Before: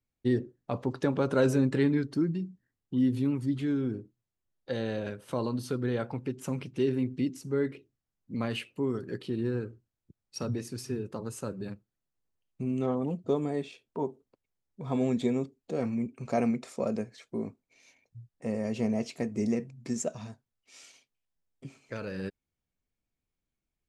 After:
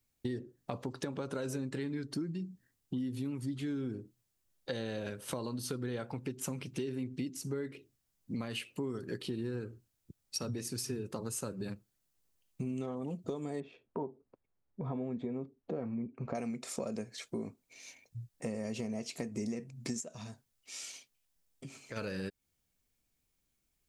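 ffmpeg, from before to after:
-filter_complex "[0:a]asettb=1/sr,asplit=3[a][b][c];[a]atrim=end=13.604[d];[b]atrim=start=13.6:end=16.35,asetpts=PTS-STARTPTS,afade=t=in:d=0.004:c=qsin,afade=t=out:st=2.746:d=0.004:c=qsin,lowpass=1.4k[e];[c]atrim=start=16.346[f];[d][e]acrossfade=d=0.004:c1=hsin:c2=qsin[g];[g][f]acrossfade=d=0.004:c1=qsin:c2=hsin,asplit=3[h][i][j];[h]afade=t=out:st=19.99:d=0.02[k];[i]acompressor=threshold=-51dB:ratio=2:attack=3.2:release=140:knee=1:detection=peak,afade=t=in:st=19.99:d=0.02,afade=t=out:st=21.96:d=0.02[l];[j]afade=t=in:st=21.96:d=0.02[m];[k][l][m]amix=inputs=3:normalize=0,alimiter=limit=-21dB:level=0:latency=1:release=390,highshelf=f=3.8k:g=10,acompressor=threshold=-40dB:ratio=4,volume=4dB"

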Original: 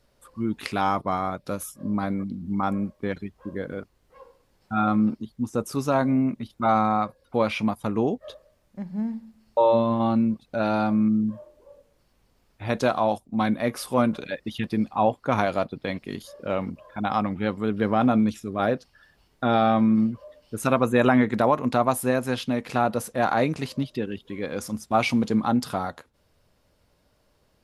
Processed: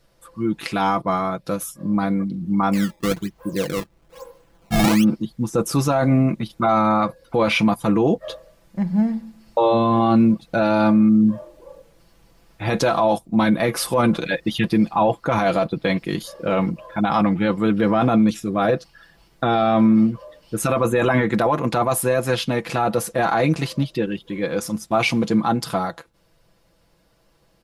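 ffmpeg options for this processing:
-filter_complex "[0:a]asettb=1/sr,asplit=3[a][b][c];[a]atrim=end=2.734[d];[b]atrim=start=2.73:end=5.04,asetpts=PTS-STARTPTS,afade=t=in:d=0.004:c=qsin,afade=t=out:st=2.306:d=0.004:c=qsin,acrusher=samples=17:mix=1:aa=0.000001:lfo=1:lforange=27.2:lforate=1.1[e];[c]atrim=start=5.036[f];[d][e]acrossfade=d=0.004:c1=hsin:c2=qsin[g];[g][f]acrossfade=d=0.004:c1=qsin:c2=hsin,aecho=1:1:6:0.63,dynaudnorm=f=390:g=21:m=11.5dB,alimiter=limit=-12.5dB:level=0:latency=1:release=13,volume=3.5dB"

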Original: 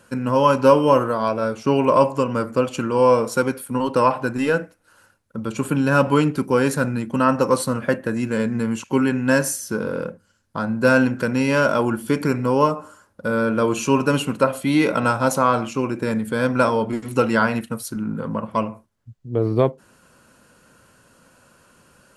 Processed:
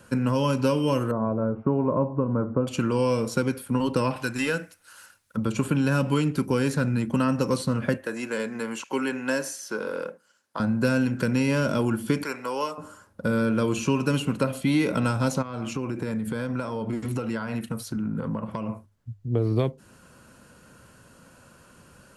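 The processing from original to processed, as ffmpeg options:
-filter_complex "[0:a]asettb=1/sr,asplit=3[a][b][c];[a]atrim=end=1.114[d];[b]atrim=start=1.11:end=2.67,asetpts=PTS-STARTPTS,afade=t=in:d=0.004:c=qsin,afade=t=out:st=1.556:d=0.004:c=qsin,lowpass=f=1.2k:w=0.5412,lowpass=f=1.2k:w=1.3066[e];[c]atrim=start=2.666[f];[d][e]acrossfade=d=0.004:c1=hsin:c2=qsin[g];[g][f]acrossfade=d=0.004:c1=qsin:c2=hsin,asettb=1/sr,asplit=3[h][i][j];[h]atrim=end=4.164[k];[i]atrim=start=4.16:end=5.37,asetpts=PTS-STARTPTS,afade=t=in:d=0.004:c=qsin,afade=t=out:st=1.206:d=0.004:c=qsin,tiltshelf=f=900:g=-10[l];[j]atrim=start=5.366[m];[k][l]acrossfade=d=0.004:c1=hsin:c2=qsin[n];[n][m]acrossfade=d=0.004:c1=qsin:c2=hsin,asettb=1/sr,asplit=3[o][p][q];[o]atrim=end=7.974[r];[p]atrim=start=7.97:end=10.6,asetpts=PTS-STARTPTS,afade=t=in:d=0.004:c=qsin,afade=t=out:st=2.626:d=0.004:c=qsin,highpass=500[s];[q]atrim=start=10.596[t];[r][s]acrossfade=d=0.004:c1=hsin:c2=qsin[u];[u][t]acrossfade=d=0.004:c1=qsin:c2=hsin,asettb=1/sr,asplit=3[v][w][x];[v]atrim=end=12.234[y];[w]atrim=start=12.23:end=12.78,asetpts=PTS-STARTPTS,afade=t=in:d=0.004:c=qsin,afade=t=out:st=0.546:d=0.004:c=qsin,highpass=730[z];[x]atrim=start=12.776[aa];[y][z]acrossfade=d=0.004:c1=hsin:c2=qsin[ab];[ab][aa]acrossfade=d=0.004:c1=qsin:c2=hsin,asplit=3[ac][ad][ae];[ac]afade=t=out:st=15.41:d=0.02[af];[ad]acompressor=threshold=-28dB:ratio=5:attack=3.2:release=140:knee=1:detection=peak,afade=t=in:st=15.41:d=0.02,afade=t=out:st=18.68:d=0.02[ag];[ae]afade=t=in:st=18.68:d=0.02[ah];[af][ag][ah]amix=inputs=3:normalize=0,equalizer=f=68:w=0.37:g=6.5,bandreject=f=50:t=h:w=6,bandreject=f=100:t=h:w=6,acrossover=split=420|2100|6000[ai][aj][ak][al];[ai]acompressor=threshold=-22dB:ratio=4[am];[aj]acompressor=threshold=-32dB:ratio=4[an];[ak]acompressor=threshold=-35dB:ratio=4[ao];[al]acompressor=threshold=-44dB:ratio=4[ap];[am][an][ao][ap]amix=inputs=4:normalize=0"

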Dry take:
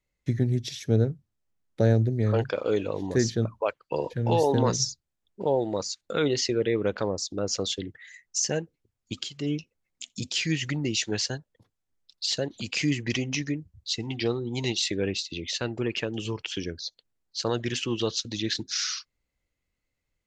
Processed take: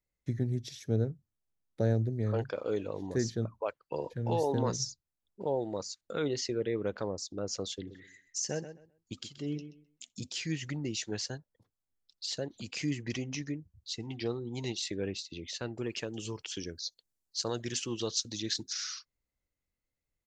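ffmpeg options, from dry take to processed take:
-filter_complex "[0:a]asplit=3[a][b][c];[a]afade=t=out:st=7.87:d=0.02[d];[b]asplit=2[e][f];[f]adelay=129,lowpass=f=3.9k:p=1,volume=-11dB,asplit=2[g][h];[h]adelay=129,lowpass=f=3.9k:p=1,volume=0.21,asplit=2[i][j];[j]adelay=129,lowpass=f=3.9k:p=1,volume=0.21[k];[e][g][i][k]amix=inputs=4:normalize=0,afade=t=in:st=7.87:d=0.02,afade=t=out:st=10.03:d=0.02[l];[c]afade=t=in:st=10.03:d=0.02[m];[d][l][m]amix=inputs=3:normalize=0,asettb=1/sr,asplit=3[n][o][p];[n]atrim=end=15.784[q];[o]atrim=start=15.78:end=18.73,asetpts=PTS-STARTPTS,afade=t=in:d=0.004:c=qsin,afade=t=out:st=2.946:d=0.004:c=qsin,bass=f=250:g=-1,treble=f=4k:g=10[r];[p]atrim=start=18.726[s];[q][r]acrossfade=d=0.004:c1=hsin:c2=qsin[t];[t][s]acrossfade=d=0.004:c1=qsin:c2=hsin,equalizer=f=2.8k:t=o:w=1.2:g=-4.5,volume=-7dB"

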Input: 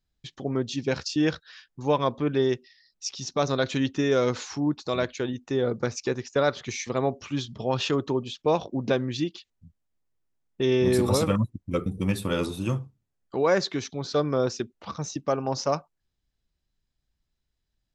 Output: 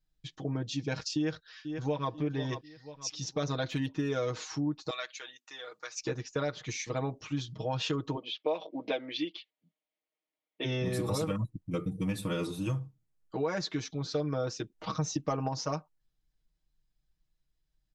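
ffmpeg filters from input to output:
-filter_complex "[0:a]asplit=2[a][b];[b]afade=t=in:st=1.15:d=0.01,afade=t=out:st=2.11:d=0.01,aecho=0:1:490|980|1470|1960:0.199526|0.0798105|0.0319242|0.0127697[c];[a][c]amix=inputs=2:normalize=0,asettb=1/sr,asplit=3[d][e][f];[d]atrim=end=3.704[g];[e]atrim=start=3.7:end=4.12,asetpts=PTS-STARTPTS,afade=t=in:d=0.004:c=qsin,afade=t=out:st=0.416:d=0.004:c=qsin,adynamicsmooth=sensitivity=4:basefreq=4.8k[h];[f]atrim=start=4.116[i];[g][h]acrossfade=d=0.004:c1=hsin:c2=qsin[j];[j][i]acrossfade=d=0.004:c1=qsin:c2=hsin,asettb=1/sr,asplit=3[k][l][m];[k]atrim=end=4.904[n];[l]atrim=start=4.9:end=5.97,asetpts=PTS-STARTPTS,afade=t=in:d=0.004:c=qsin,afade=t=out:st=1.066:d=0.004:c=qsin,highpass=1.4k[o];[m]atrim=start=5.966[p];[n][o]acrossfade=d=0.004:c1=hsin:c2=qsin[q];[q][p]acrossfade=d=0.004:c1=qsin:c2=hsin,asplit=3[r][s][t];[r]afade=t=out:st=8.15:d=0.02[u];[s]highpass=f=270:w=0.5412,highpass=f=270:w=1.3066,equalizer=f=360:t=q:w=4:g=-3,equalizer=f=610:t=q:w=4:g=6,equalizer=f=1.5k:t=q:w=4:g=-4,equalizer=f=2.2k:t=q:w=4:g=8,equalizer=f=3.2k:t=q:w=4:g=6,lowpass=f=4.5k:w=0.5412,lowpass=f=4.5k:w=1.3066,afade=t=in:st=8.15:d=0.02,afade=t=out:st=10.64:d=0.02[v];[t]afade=t=in:st=10.64:d=0.02[w];[u][v][w]amix=inputs=3:normalize=0,asplit=3[x][y][z];[x]afade=t=out:st=14.78:d=0.02[aa];[y]acontrast=57,afade=t=in:st=14.78:d=0.02,afade=t=out:st=15.47:d=0.02[ab];[z]afade=t=in:st=15.47:d=0.02[ac];[aa][ab][ac]amix=inputs=3:normalize=0,lowshelf=f=78:g=7,aecho=1:1:6.4:0.92,acompressor=threshold=-22dB:ratio=4,volume=-6.5dB"

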